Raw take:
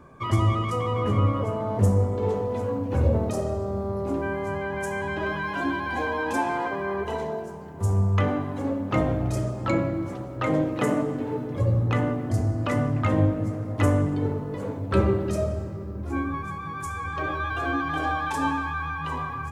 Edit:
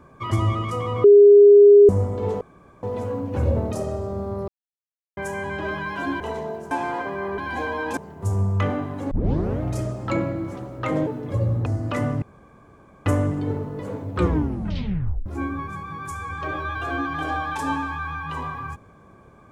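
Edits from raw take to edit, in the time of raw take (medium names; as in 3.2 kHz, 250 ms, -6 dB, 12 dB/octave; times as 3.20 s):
1.04–1.89 s: bleep 408 Hz -6.5 dBFS
2.41 s: insert room tone 0.42 s
4.06–4.75 s: mute
5.78–6.37 s: swap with 7.04–7.55 s
8.69 s: tape start 0.50 s
10.65–11.33 s: delete
11.92–12.41 s: delete
12.97–13.81 s: room tone
14.88 s: tape stop 1.13 s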